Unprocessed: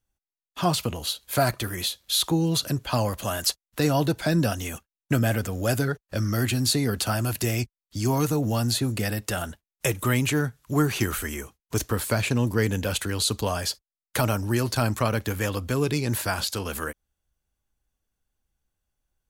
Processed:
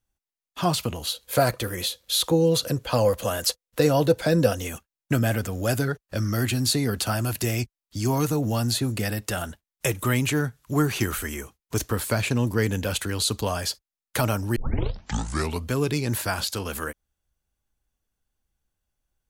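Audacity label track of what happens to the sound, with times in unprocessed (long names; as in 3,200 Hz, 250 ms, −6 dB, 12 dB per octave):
1.120000	4.680000	parametric band 500 Hz +15 dB 0.22 octaves
14.560000	14.560000	tape start 1.15 s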